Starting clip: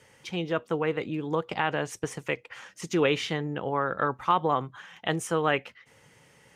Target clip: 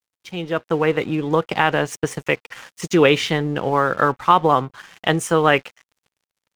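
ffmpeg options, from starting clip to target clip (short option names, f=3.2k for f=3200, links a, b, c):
-af "aeval=exprs='sgn(val(0))*max(abs(val(0))-0.00316,0)':c=same,dynaudnorm=f=140:g=9:m=9dB,volume=2dB"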